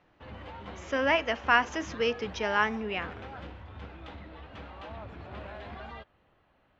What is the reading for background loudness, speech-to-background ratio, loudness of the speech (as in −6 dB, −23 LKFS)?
−44.0 LKFS, 15.5 dB, −28.5 LKFS